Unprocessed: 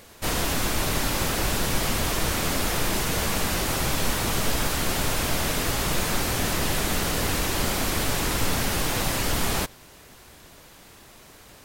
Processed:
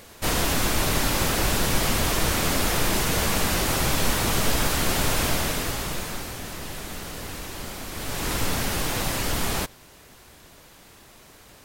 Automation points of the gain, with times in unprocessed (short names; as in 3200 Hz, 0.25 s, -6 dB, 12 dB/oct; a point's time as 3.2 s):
5.26 s +2 dB
6.41 s -10 dB
7.89 s -10 dB
8.31 s -1 dB